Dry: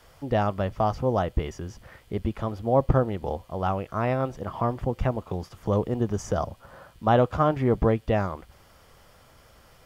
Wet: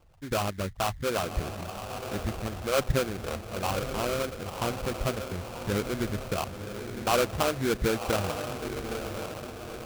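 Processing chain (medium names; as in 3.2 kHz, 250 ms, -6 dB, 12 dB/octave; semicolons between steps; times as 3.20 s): resonances exaggerated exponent 3; echo that smears into a reverb 1043 ms, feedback 50%, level -7 dB; sample-rate reducer 1.9 kHz, jitter 20%; trim -5 dB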